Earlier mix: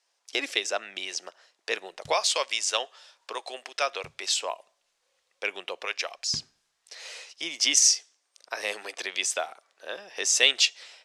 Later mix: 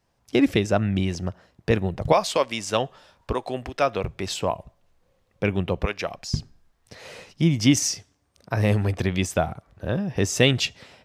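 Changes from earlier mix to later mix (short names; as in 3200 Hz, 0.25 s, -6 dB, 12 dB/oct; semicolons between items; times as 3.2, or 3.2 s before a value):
speech: remove ladder high-pass 320 Hz, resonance 25%; master: remove weighting filter ITU-R 468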